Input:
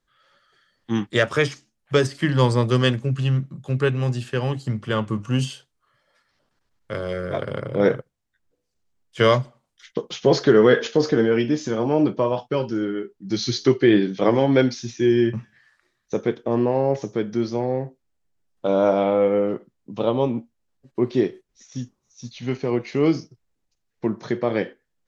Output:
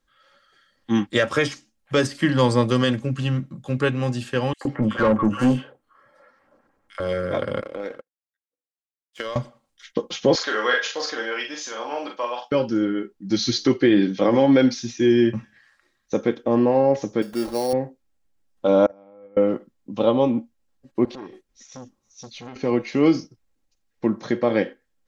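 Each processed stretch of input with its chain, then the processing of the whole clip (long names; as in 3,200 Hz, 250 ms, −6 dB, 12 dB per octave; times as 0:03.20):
0:04.53–0:07.00: parametric band 4,000 Hz −13.5 dB 2.1 octaves + three-band delay without the direct sound highs, mids, lows 80/120 ms, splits 810/3,100 Hz + mid-hump overdrive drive 24 dB, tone 1,200 Hz, clips at −11.5 dBFS
0:07.61–0:09.36: high-pass filter 330 Hz + downward compressor 10 to 1, threshold −25 dBFS + power curve on the samples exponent 1.4
0:10.35–0:12.52: high-pass filter 990 Hz + double-tracking delay 41 ms −4 dB
0:17.22–0:17.73: bass and treble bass −12 dB, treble 0 dB + sample-rate reduction 5,000 Hz
0:18.86–0:19.37: noise gate −13 dBFS, range −32 dB + parametric band 3,400 Hz −11.5 dB 0.66 octaves
0:21.05–0:22.56: downward compressor 10 to 1, threshold −30 dBFS + saturating transformer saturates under 910 Hz
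whole clip: comb filter 3.7 ms, depth 43%; boost into a limiter +8 dB; level −6.5 dB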